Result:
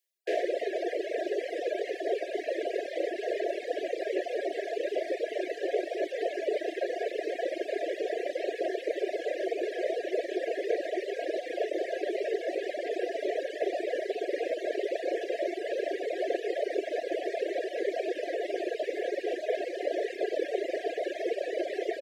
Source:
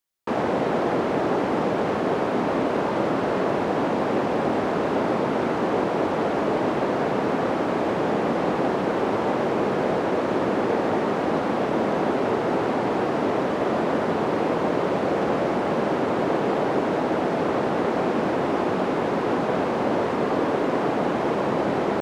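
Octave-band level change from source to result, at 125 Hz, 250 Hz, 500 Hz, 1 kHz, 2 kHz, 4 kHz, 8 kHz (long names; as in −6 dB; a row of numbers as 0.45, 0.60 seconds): below −40 dB, −15.0 dB, −6.0 dB, −15.5 dB, −8.0 dB, −6.0 dB, can't be measured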